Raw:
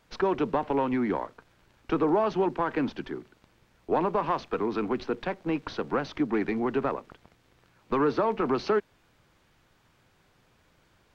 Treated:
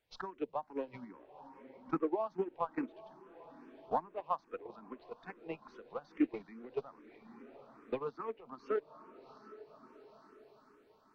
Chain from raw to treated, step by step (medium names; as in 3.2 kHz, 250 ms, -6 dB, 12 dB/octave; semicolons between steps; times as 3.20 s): bass shelf 300 Hz -4 dB; on a send: echo that smears into a reverb 768 ms, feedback 45%, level -7.5 dB; on the sum: compression 5:1, threshold -38 dBFS, peak gain reduction 15.5 dB; spectral noise reduction 6 dB; gate -37 dBFS, range -24 dB; barber-pole phaser +2.4 Hz; trim +16.5 dB